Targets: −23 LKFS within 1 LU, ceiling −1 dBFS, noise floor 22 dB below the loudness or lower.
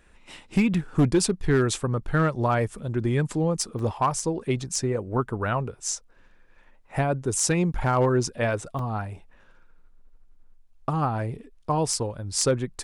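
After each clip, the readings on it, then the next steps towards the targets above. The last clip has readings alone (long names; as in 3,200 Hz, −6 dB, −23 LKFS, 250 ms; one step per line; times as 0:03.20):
share of clipped samples 0.4%; peaks flattened at −14.0 dBFS; number of dropouts 4; longest dropout 2.6 ms; integrated loudness −25.5 LKFS; sample peak −14.0 dBFS; target loudness −23.0 LKFS
→ clipped peaks rebuilt −14 dBFS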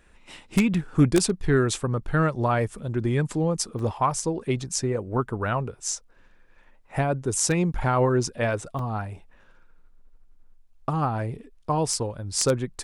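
share of clipped samples 0.0%; number of dropouts 4; longest dropout 2.6 ms
→ repair the gap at 0:00.74/0:03.79/0:08.79/0:12.38, 2.6 ms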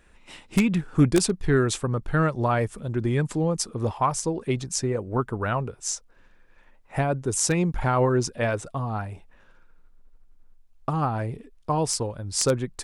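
number of dropouts 0; integrated loudness −25.5 LKFS; sample peak −5.0 dBFS; target loudness −23.0 LKFS
→ level +2.5 dB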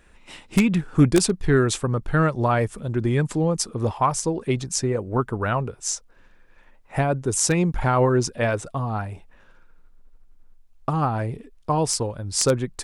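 integrated loudness −23.0 LKFS; sample peak −2.5 dBFS; background noise floor −53 dBFS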